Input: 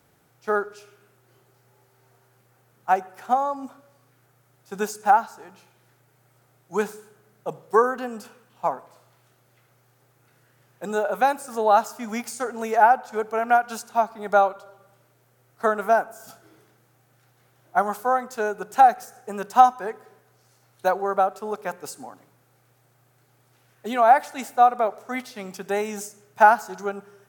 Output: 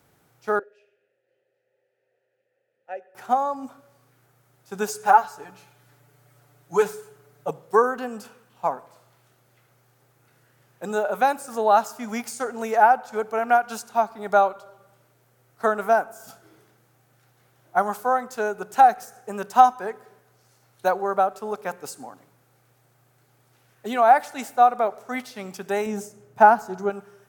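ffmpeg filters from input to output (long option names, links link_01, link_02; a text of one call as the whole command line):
ffmpeg -i in.wav -filter_complex "[0:a]asettb=1/sr,asplit=3[link_01][link_02][link_03];[link_01]atrim=end=0.594[link_04];[link_02]atrim=start=0.59:end=3.15,asetpts=PTS-STARTPTS,afade=type=in:duration=0.004:curve=qsin,afade=type=out:start_time=2.556:duration=0.004:curve=qsin,asplit=3[link_05][link_06][link_07];[link_05]bandpass=frequency=530:width_type=q:width=8,volume=0dB[link_08];[link_06]bandpass=frequency=1840:width_type=q:width=8,volume=-6dB[link_09];[link_07]bandpass=frequency=2480:width_type=q:width=8,volume=-9dB[link_10];[link_08][link_09][link_10]amix=inputs=3:normalize=0[link_11];[link_03]atrim=start=3.146[link_12];[link_04][link_11]acrossfade=duration=0.004:curve1=hsin:curve2=qsin[link_13];[link_13][link_12]acrossfade=duration=0.004:curve1=qsin:curve2=hsin,asettb=1/sr,asplit=3[link_14][link_15][link_16];[link_14]atrim=end=4.874[link_17];[link_15]atrim=start=4.87:end=7.51,asetpts=PTS-STARTPTS,afade=type=in:duration=0.004:curve=qsin,afade=type=out:start_time=2.636:duration=0.004:curve=qsin,aecho=1:1:6.9:0.93,atrim=end_sample=116424[link_18];[link_16]atrim=start=7.506[link_19];[link_17][link_18]acrossfade=duration=0.004:curve1=hsin:curve2=qsin[link_20];[link_20][link_19]acrossfade=duration=0.004:curve1=qsin:curve2=hsin,asettb=1/sr,asplit=3[link_21][link_22][link_23];[link_21]atrim=end=25.864[link_24];[link_22]atrim=start=25.86:end=26.9,asetpts=PTS-STARTPTS,afade=type=in:duration=0.004:curve=qsin,afade=type=out:start_time=1.036:duration=0.004:curve=qsin,tiltshelf=frequency=970:gain=6[link_25];[link_23]atrim=start=26.896[link_26];[link_24][link_25]acrossfade=duration=0.004:curve1=hsin:curve2=qsin[link_27];[link_27][link_26]acrossfade=duration=0.004:curve1=qsin:curve2=hsin" out.wav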